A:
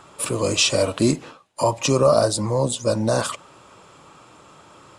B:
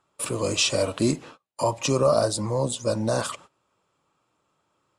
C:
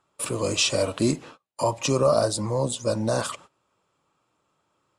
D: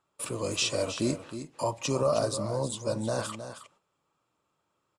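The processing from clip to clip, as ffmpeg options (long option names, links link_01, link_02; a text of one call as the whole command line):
ffmpeg -i in.wav -af "agate=range=-20dB:threshold=-41dB:ratio=16:detection=peak,volume=-4dB" out.wav
ffmpeg -i in.wav -af anull out.wav
ffmpeg -i in.wav -af "aecho=1:1:315:0.299,volume=-6dB" out.wav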